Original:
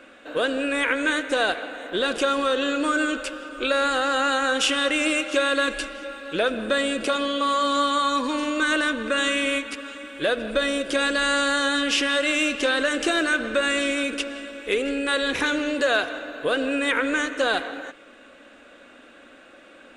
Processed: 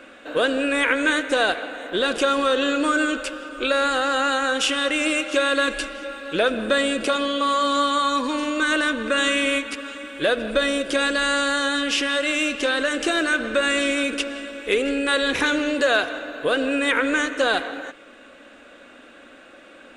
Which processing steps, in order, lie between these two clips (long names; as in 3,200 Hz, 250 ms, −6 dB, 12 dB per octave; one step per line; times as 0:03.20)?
speech leveller within 3 dB 2 s
level +1.5 dB